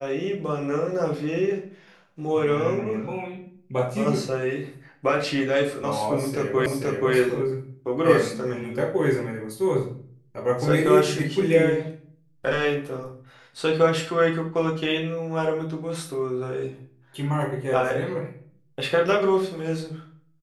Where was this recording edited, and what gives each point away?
6.66 s: repeat of the last 0.48 s

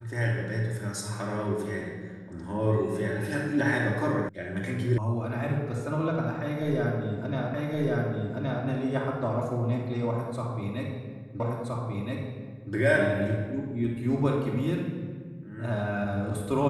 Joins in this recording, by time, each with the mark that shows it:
4.29 s: sound stops dead
4.98 s: sound stops dead
7.54 s: repeat of the last 1.12 s
11.40 s: repeat of the last 1.32 s

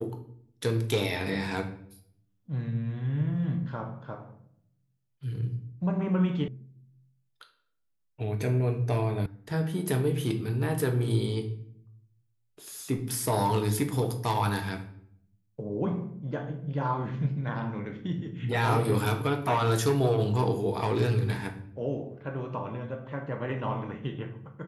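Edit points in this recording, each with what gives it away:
6.48 s: sound stops dead
9.26 s: sound stops dead

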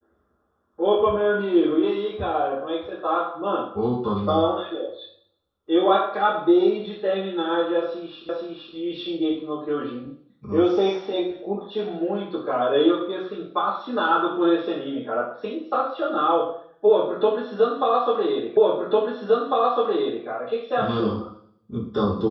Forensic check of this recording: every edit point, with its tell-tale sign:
8.29 s: repeat of the last 0.47 s
18.57 s: repeat of the last 1.7 s

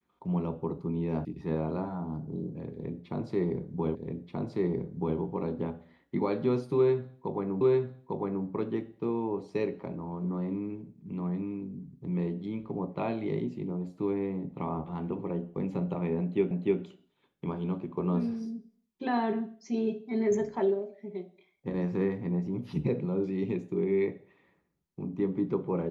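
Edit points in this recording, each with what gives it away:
1.25 s: sound stops dead
3.95 s: repeat of the last 1.23 s
7.61 s: repeat of the last 0.85 s
16.51 s: repeat of the last 0.3 s

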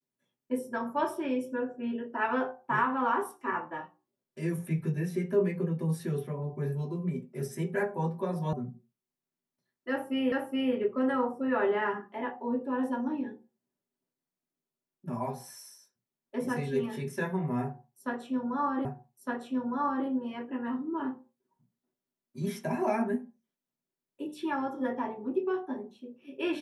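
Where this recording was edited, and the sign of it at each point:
8.53 s: sound stops dead
10.32 s: repeat of the last 0.42 s
18.85 s: repeat of the last 1.21 s

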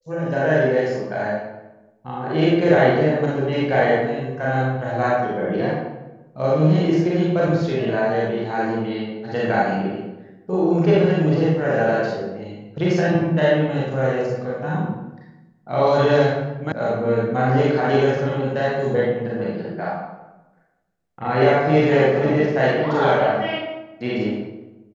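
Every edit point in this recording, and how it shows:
16.72 s: sound stops dead

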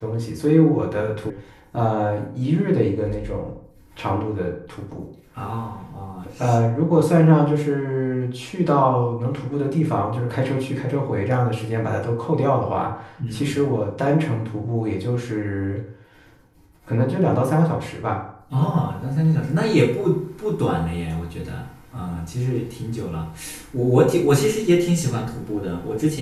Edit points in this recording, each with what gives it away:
1.30 s: sound stops dead

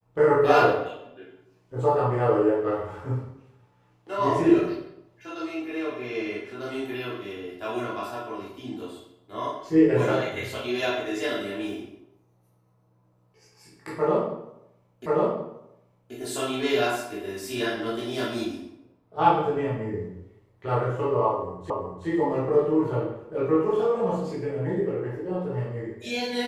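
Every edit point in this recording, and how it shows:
15.06 s: repeat of the last 1.08 s
21.70 s: repeat of the last 0.37 s

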